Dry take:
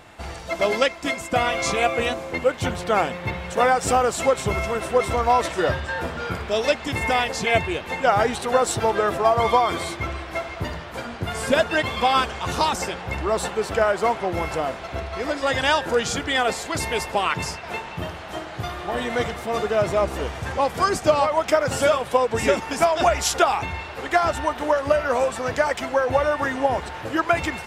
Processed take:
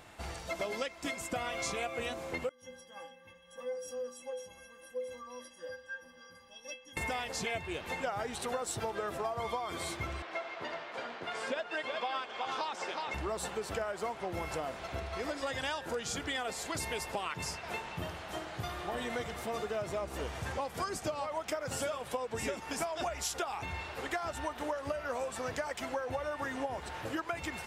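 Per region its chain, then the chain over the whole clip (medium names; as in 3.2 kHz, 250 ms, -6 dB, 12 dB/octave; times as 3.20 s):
2.49–6.97 s: rippled EQ curve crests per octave 1.2, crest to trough 14 dB + tremolo 3.8 Hz, depth 29% + inharmonic resonator 240 Hz, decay 0.57 s, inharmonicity 0.03
10.22–13.14 s: band-pass 380–4100 Hz + delay 368 ms -8 dB
whole clip: treble shelf 5.8 kHz +6 dB; compression, threshold -25 dBFS; trim -8 dB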